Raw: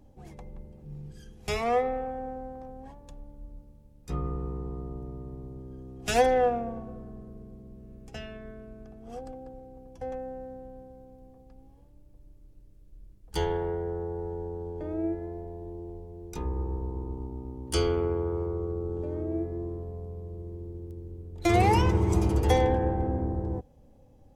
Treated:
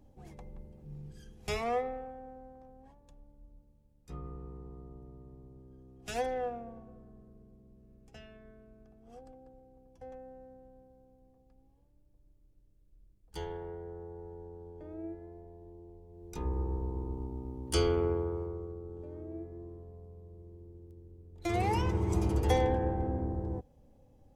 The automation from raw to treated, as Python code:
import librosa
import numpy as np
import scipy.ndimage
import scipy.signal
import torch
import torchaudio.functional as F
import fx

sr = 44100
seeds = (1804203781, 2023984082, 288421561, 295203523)

y = fx.gain(x, sr, db=fx.line((1.53, -4.0), (2.2, -11.5), (16.02, -11.5), (16.47, -2.0), (18.1, -2.0), (18.81, -11.5), (21.17, -11.5), (22.31, -4.5)))